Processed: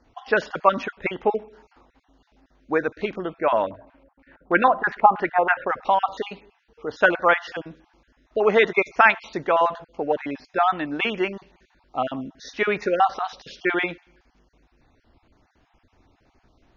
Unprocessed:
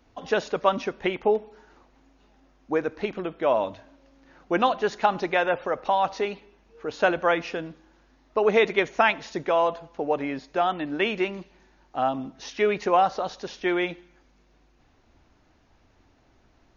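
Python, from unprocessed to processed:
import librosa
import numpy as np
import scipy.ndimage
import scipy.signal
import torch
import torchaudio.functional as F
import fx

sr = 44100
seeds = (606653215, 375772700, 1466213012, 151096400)

y = fx.spec_dropout(x, sr, seeds[0], share_pct=29)
y = scipy.signal.sosfilt(scipy.signal.butter(2, 5700.0, 'lowpass', fs=sr, output='sos'), y)
y = fx.filter_lfo_lowpass(y, sr, shape='square', hz=3.1, low_hz=920.0, high_hz=2300.0, q=1.5, at=(3.62, 5.68), fade=0.02)
y = fx.dynamic_eq(y, sr, hz=1500.0, q=1.2, threshold_db=-39.0, ratio=4.0, max_db=7)
y = F.gain(torch.from_numpy(y), 1.5).numpy()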